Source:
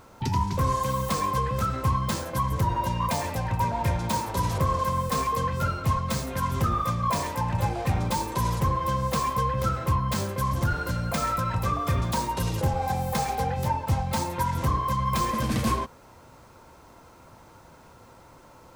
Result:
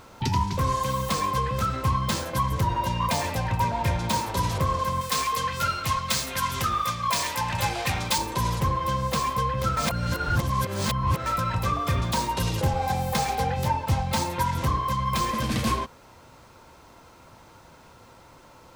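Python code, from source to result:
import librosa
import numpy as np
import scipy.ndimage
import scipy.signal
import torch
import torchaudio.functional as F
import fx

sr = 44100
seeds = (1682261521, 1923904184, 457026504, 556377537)

y = fx.tilt_shelf(x, sr, db=-6.5, hz=970.0, at=(5.01, 8.18))
y = fx.edit(y, sr, fx.reverse_span(start_s=9.77, length_s=1.49), tone=tone)
y = fx.peak_eq(y, sr, hz=3400.0, db=5.0, octaves=1.8)
y = fx.rider(y, sr, range_db=10, speed_s=0.5)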